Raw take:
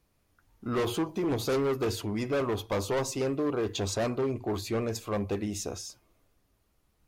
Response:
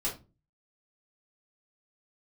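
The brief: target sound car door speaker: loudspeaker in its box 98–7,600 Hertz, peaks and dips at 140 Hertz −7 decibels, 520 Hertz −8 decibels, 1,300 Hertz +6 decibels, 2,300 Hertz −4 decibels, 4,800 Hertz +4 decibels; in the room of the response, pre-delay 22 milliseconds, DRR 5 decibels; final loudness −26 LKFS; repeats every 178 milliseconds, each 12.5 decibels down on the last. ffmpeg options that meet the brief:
-filter_complex "[0:a]aecho=1:1:178|356|534:0.237|0.0569|0.0137,asplit=2[link_01][link_02];[1:a]atrim=start_sample=2205,adelay=22[link_03];[link_02][link_03]afir=irnorm=-1:irlink=0,volume=-9.5dB[link_04];[link_01][link_04]amix=inputs=2:normalize=0,highpass=98,equalizer=frequency=140:width_type=q:width=4:gain=-7,equalizer=frequency=520:width_type=q:width=4:gain=-8,equalizer=frequency=1300:width_type=q:width=4:gain=6,equalizer=frequency=2300:width_type=q:width=4:gain=-4,equalizer=frequency=4800:width_type=q:width=4:gain=4,lowpass=frequency=7600:width=0.5412,lowpass=frequency=7600:width=1.3066,volume=4dB"

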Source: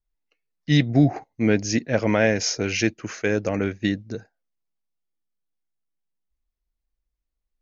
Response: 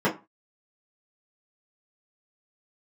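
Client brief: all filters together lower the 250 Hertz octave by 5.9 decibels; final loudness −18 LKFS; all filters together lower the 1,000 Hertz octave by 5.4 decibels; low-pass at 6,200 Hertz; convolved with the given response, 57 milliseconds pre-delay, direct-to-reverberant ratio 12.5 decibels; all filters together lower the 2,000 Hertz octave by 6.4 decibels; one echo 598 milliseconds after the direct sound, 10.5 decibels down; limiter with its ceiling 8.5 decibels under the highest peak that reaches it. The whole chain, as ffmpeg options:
-filter_complex "[0:a]lowpass=6200,equalizer=frequency=250:width_type=o:gain=-7.5,equalizer=frequency=1000:width_type=o:gain=-6.5,equalizer=frequency=2000:width_type=o:gain=-6,alimiter=limit=-19dB:level=0:latency=1,aecho=1:1:598:0.299,asplit=2[link_01][link_02];[1:a]atrim=start_sample=2205,adelay=57[link_03];[link_02][link_03]afir=irnorm=-1:irlink=0,volume=-27.5dB[link_04];[link_01][link_04]amix=inputs=2:normalize=0,volume=12dB"

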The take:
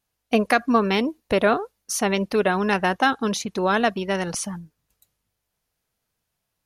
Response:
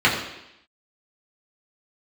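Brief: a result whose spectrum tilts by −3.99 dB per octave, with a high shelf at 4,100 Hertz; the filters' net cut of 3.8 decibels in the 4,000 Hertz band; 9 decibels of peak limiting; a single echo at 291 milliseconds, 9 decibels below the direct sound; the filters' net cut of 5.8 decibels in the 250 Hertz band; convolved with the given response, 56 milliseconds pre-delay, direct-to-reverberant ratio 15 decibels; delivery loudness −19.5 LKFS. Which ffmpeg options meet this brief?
-filter_complex "[0:a]equalizer=frequency=250:width_type=o:gain=-7.5,equalizer=frequency=4000:width_type=o:gain=-3,highshelf=frequency=4100:gain=-4,alimiter=limit=-15dB:level=0:latency=1,aecho=1:1:291:0.355,asplit=2[link_01][link_02];[1:a]atrim=start_sample=2205,adelay=56[link_03];[link_02][link_03]afir=irnorm=-1:irlink=0,volume=-36dB[link_04];[link_01][link_04]amix=inputs=2:normalize=0,volume=7.5dB"

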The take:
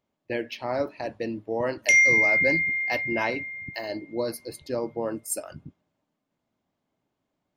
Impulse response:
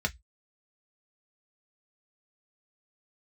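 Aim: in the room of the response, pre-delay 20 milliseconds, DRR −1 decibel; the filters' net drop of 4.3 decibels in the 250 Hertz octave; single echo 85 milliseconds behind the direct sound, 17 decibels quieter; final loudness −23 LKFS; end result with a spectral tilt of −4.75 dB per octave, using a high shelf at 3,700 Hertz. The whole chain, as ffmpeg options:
-filter_complex "[0:a]equalizer=frequency=250:width_type=o:gain=-6,highshelf=frequency=3700:gain=-7,aecho=1:1:85:0.141,asplit=2[link_01][link_02];[1:a]atrim=start_sample=2205,adelay=20[link_03];[link_02][link_03]afir=irnorm=-1:irlink=0,volume=-6dB[link_04];[link_01][link_04]amix=inputs=2:normalize=0,volume=4.5dB"

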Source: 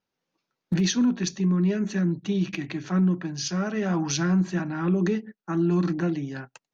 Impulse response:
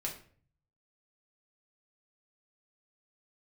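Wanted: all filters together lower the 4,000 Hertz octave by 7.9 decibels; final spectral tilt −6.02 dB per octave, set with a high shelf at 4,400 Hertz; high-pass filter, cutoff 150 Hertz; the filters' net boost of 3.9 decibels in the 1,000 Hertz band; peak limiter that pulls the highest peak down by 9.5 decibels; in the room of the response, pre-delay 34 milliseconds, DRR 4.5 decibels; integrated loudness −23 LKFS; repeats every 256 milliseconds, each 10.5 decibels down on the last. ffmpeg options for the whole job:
-filter_complex "[0:a]highpass=150,equalizer=frequency=1000:width_type=o:gain=6,equalizer=frequency=4000:width_type=o:gain=-6.5,highshelf=frequency=4400:gain=-6.5,alimiter=limit=-24dB:level=0:latency=1,aecho=1:1:256|512|768:0.299|0.0896|0.0269,asplit=2[link_01][link_02];[1:a]atrim=start_sample=2205,adelay=34[link_03];[link_02][link_03]afir=irnorm=-1:irlink=0,volume=-5.5dB[link_04];[link_01][link_04]amix=inputs=2:normalize=0,volume=7dB"

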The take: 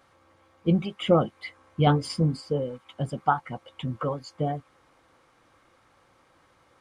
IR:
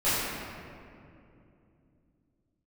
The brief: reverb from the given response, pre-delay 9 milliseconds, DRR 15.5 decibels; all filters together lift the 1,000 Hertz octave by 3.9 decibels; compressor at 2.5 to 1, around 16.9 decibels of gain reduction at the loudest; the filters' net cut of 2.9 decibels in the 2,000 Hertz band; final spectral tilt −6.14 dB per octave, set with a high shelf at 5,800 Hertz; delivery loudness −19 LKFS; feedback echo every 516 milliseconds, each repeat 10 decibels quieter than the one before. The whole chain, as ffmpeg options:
-filter_complex "[0:a]equalizer=frequency=1000:width_type=o:gain=7.5,equalizer=frequency=2000:width_type=o:gain=-8,highshelf=frequency=5800:gain=-5.5,acompressor=threshold=-40dB:ratio=2.5,aecho=1:1:516|1032|1548|2064:0.316|0.101|0.0324|0.0104,asplit=2[link_01][link_02];[1:a]atrim=start_sample=2205,adelay=9[link_03];[link_02][link_03]afir=irnorm=-1:irlink=0,volume=-30dB[link_04];[link_01][link_04]amix=inputs=2:normalize=0,volume=21dB"

